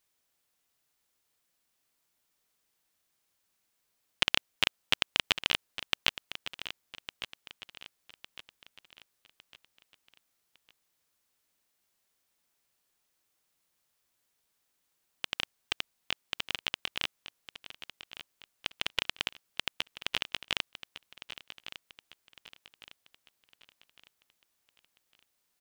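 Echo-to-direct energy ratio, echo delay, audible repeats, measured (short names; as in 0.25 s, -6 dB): -12.0 dB, 1.156 s, 3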